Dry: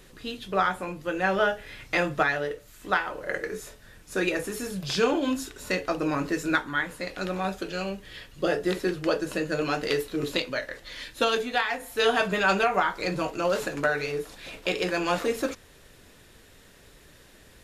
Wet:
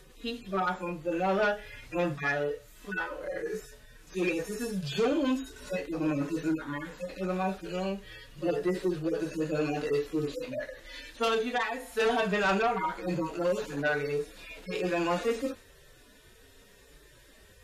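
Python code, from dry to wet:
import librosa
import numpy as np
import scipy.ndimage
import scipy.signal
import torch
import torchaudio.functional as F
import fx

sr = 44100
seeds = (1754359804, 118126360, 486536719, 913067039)

y = fx.hpss_only(x, sr, part='harmonic')
y = fx.cheby_harmonics(y, sr, harmonics=(5,), levels_db=(-13,), full_scale_db=-11.5)
y = F.gain(torch.from_numpy(y), -6.0).numpy()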